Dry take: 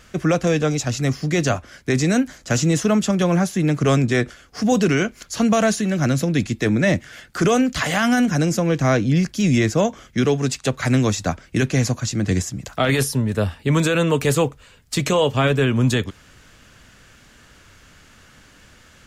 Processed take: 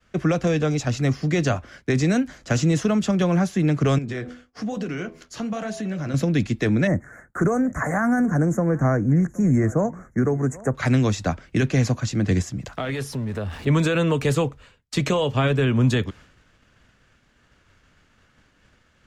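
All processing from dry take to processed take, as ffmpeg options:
ffmpeg -i in.wav -filter_complex "[0:a]asettb=1/sr,asplit=3[link_01][link_02][link_03];[link_01]atrim=end=3.984[link_04];[link_02]atrim=start=3.98:end=6.14,asetpts=PTS-STARTPTS,afade=type=in:duration=0.004:curve=qsin,afade=type=out:start_time=2.156:duration=0.004:curve=qsin,bandreject=frequency=82.43:width_type=h:width=4,bandreject=frequency=164.86:width_type=h:width=4,bandreject=frequency=247.29:width_type=h:width=4,bandreject=frequency=329.72:width_type=h:width=4,bandreject=frequency=412.15:width_type=h:width=4,bandreject=frequency=494.58:width_type=h:width=4,bandreject=frequency=577.01:width_type=h:width=4,bandreject=frequency=659.44:width_type=h:width=4,bandreject=frequency=741.87:width_type=h:width=4,bandreject=frequency=824.3:width_type=h:width=4,bandreject=frequency=906.73:width_type=h:width=4,bandreject=frequency=989.16:width_type=h:width=4,bandreject=frequency=1071.59:width_type=h:width=4,bandreject=frequency=1154.02:width_type=h:width=4,acompressor=threshold=-20dB:ratio=10:attack=3.2:release=140:knee=1:detection=peak,flanger=delay=4:depth=9.8:regen=-60:speed=1.1:shape=sinusoidal[link_05];[link_03]atrim=start=6.136[link_06];[link_04][link_05]acrossfade=duration=0.004:curve1=hsin:curve2=qsin[link_07];[link_07][link_06]acrossfade=duration=0.004:curve1=qsin:curve2=hsin,asettb=1/sr,asplit=3[link_08][link_09][link_10];[link_08]atrim=end=6.874[link_11];[link_09]atrim=start=6.87:end=10.75,asetpts=PTS-STARTPTS,afade=type=in:duration=0.004:curve=qsin,afade=type=out:start_time=3.876:duration=0.004:curve=qsin,asuperstop=centerf=3500:order=8:qfactor=0.76,equalizer=frequency=4900:width=3:gain=-9.5,aecho=1:1:772:0.0668,atrim=end_sample=171108[link_12];[link_10]atrim=start=10.746[link_13];[link_11][link_12]acrossfade=duration=0.004:curve1=hsin:curve2=qsin[link_14];[link_14][link_13]acrossfade=duration=0.004:curve1=qsin:curve2=hsin,asettb=1/sr,asplit=3[link_15][link_16][link_17];[link_15]atrim=end=12.784[link_18];[link_16]atrim=start=12.78:end=13.67,asetpts=PTS-STARTPTS,afade=type=in:duration=0.004:curve=qsin,afade=type=out:start_time=0.886:duration=0.004:curve=qsin,aeval=exprs='val(0)+0.5*0.0224*sgn(val(0))':channel_layout=same,acompressor=threshold=-26dB:ratio=3:attack=3.2:release=140:knee=1:detection=peak[link_19];[link_17]atrim=start=13.666[link_20];[link_18][link_19]acrossfade=duration=0.004:curve1=hsin:curve2=qsin[link_21];[link_21][link_20]acrossfade=duration=0.004:curve1=qsin:curve2=hsin,agate=range=-33dB:threshold=-41dB:ratio=3:detection=peak,aemphasis=mode=reproduction:type=50kf,acrossover=split=170|3000[link_22][link_23][link_24];[link_23]acompressor=threshold=-19dB:ratio=6[link_25];[link_22][link_25][link_24]amix=inputs=3:normalize=0" out.wav

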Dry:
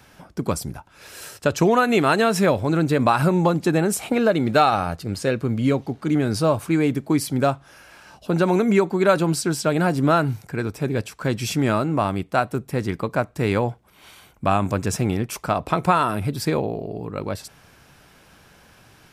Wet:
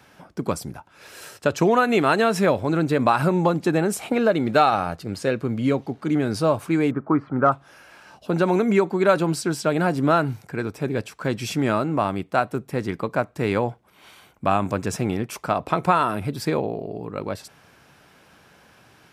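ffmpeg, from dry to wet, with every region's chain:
ffmpeg -i in.wav -filter_complex "[0:a]asettb=1/sr,asplit=3[link_01][link_02][link_03];[link_01]atrim=end=6.914[link_04];[link_02]atrim=start=6.91:end=7.52,asetpts=PTS-STARTPTS,afade=type=in:duration=0.004:curve=qsin,afade=type=out:start_time=0.606:duration=0.004:curve=qsin,lowpass=frequency=1300:width_type=q:width=5.3,aemphasis=mode=reproduction:type=75kf,deesser=0.85[link_05];[link_03]atrim=start=7.516[link_06];[link_04][link_05]acrossfade=duration=0.004:curve1=hsin:curve2=qsin[link_07];[link_07][link_06]acrossfade=duration=0.004:curve1=qsin:curve2=hsin,highpass=frequency=150:poles=1,highshelf=frequency=4300:gain=-5.5" out.wav

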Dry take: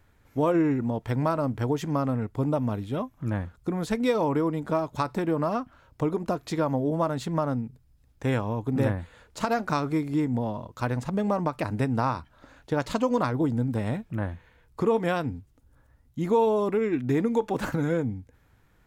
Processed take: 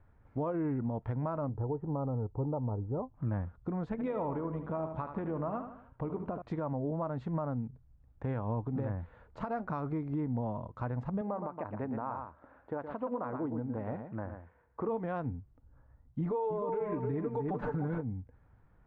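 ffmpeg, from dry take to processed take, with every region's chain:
ffmpeg -i in.wav -filter_complex "[0:a]asettb=1/sr,asplit=3[link_01][link_02][link_03];[link_01]atrim=end=1.494[link_04];[link_02]atrim=start=1.49:end=3.15,asetpts=PTS-STARTPTS,afade=type=in:duration=0.004:curve=qsin,afade=type=out:start_time=1.656:duration=0.004:curve=qsin,lowpass=frequency=1000:width=0.5412,lowpass=frequency=1000:width=1.3066,aecho=1:1:2.3:0.43,atrim=end_sample=73206[link_05];[link_03]atrim=start=3.146[link_06];[link_04][link_05]acrossfade=duration=0.004:curve1=hsin:curve2=qsin[link_07];[link_07][link_06]acrossfade=duration=0.004:curve1=qsin:curve2=hsin,asettb=1/sr,asplit=3[link_08][link_09][link_10];[link_08]atrim=end=3.904[link_11];[link_09]atrim=start=3.9:end=6.42,asetpts=PTS-STARTPTS,afade=type=in:duration=0.004:curve=qsin,afade=type=out:start_time=2.516:duration=0.004:curve=qsin,highshelf=frequency=4000:width_type=q:width=1.5:gain=-8,tremolo=f=89:d=0.333,aecho=1:1:75|150|225|300:0.316|0.13|0.0532|0.0218,atrim=end_sample=111132[link_12];[link_10]atrim=start=6.416[link_13];[link_11][link_12]acrossfade=duration=0.004:curve1=hsin:curve2=qsin[link_14];[link_14][link_13]acrossfade=duration=0.004:curve1=qsin:curve2=hsin,asettb=1/sr,asplit=3[link_15][link_16][link_17];[link_15]atrim=end=11.214[link_18];[link_16]atrim=start=11.21:end=14.89,asetpts=PTS-STARTPTS,afade=type=in:duration=0.004:curve=qsin,afade=type=out:start_time=3.676:duration=0.004:curve=qsin,highpass=100,lowpass=2200,equalizer=frequency=140:width_type=o:width=1.1:gain=-10,aecho=1:1:117:0.355,atrim=end_sample=162288[link_19];[link_17]atrim=start=14.886[link_20];[link_18][link_19]acrossfade=duration=0.004:curve1=hsin:curve2=qsin[link_21];[link_21][link_20]acrossfade=duration=0.004:curve1=qsin:curve2=hsin,asettb=1/sr,asplit=3[link_22][link_23][link_24];[link_22]atrim=end=16.204[link_25];[link_23]atrim=start=16.2:end=18.01,asetpts=PTS-STARTPTS,afade=type=in:duration=0.004:curve=qsin,afade=type=out:start_time=1.806:duration=0.004:curve=qsin,aecho=1:1:6.8:0.91,atrim=end_sample=79821,asplit=2[link_26][link_27];[link_27]adelay=301,lowpass=frequency=2400:poles=1,volume=-5dB,asplit=2[link_28][link_29];[link_29]adelay=301,lowpass=frequency=2400:poles=1,volume=0.29,asplit=2[link_30][link_31];[link_31]adelay=301,lowpass=frequency=2400:poles=1,volume=0.29,asplit=2[link_32][link_33];[link_33]adelay=301,lowpass=frequency=2400:poles=1,volume=0.29[link_34];[link_26][link_28][link_30][link_32][link_34]amix=inputs=5:normalize=0,atrim=end_sample=79821[link_35];[link_24]atrim=start=18.006[link_36];[link_25][link_35]acrossfade=duration=0.004:curve1=hsin:curve2=qsin[link_37];[link_37][link_36]acrossfade=duration=0.004:curve1=qsin:curve2=hsin,lowpass=1100,equalizer=frequency=340:width=0.96:gain=-5,alimiter=level_in=2dB:limit=-24dB:level=0:latency=1:release=213,volume=-2dB" out.wav

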